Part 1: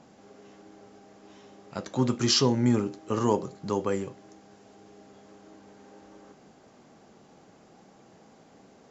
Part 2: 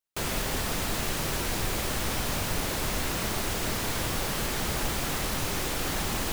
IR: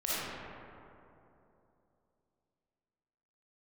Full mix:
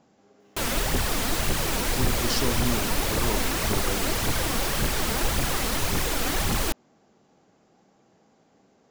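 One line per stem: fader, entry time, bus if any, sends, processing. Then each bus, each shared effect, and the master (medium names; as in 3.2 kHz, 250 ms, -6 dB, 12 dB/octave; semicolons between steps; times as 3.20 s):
-6.5 dB, 0.00 s, no send, none
+2.5 dB, 0.40 s, no send, phaser 1.8 Hz, delay 4.6 ms, feedback 48%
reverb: none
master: none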